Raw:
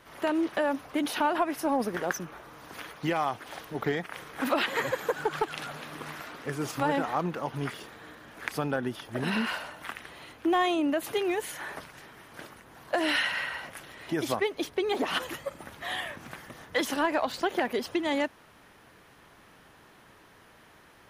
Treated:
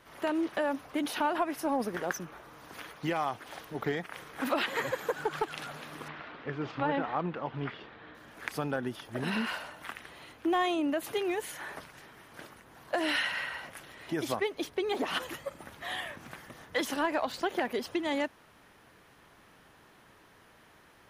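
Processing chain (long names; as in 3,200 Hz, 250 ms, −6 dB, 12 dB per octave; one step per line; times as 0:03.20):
0:06.08–0:08.15: low-pass filter 3,700 Hz 24 dB per octave
level −3 dB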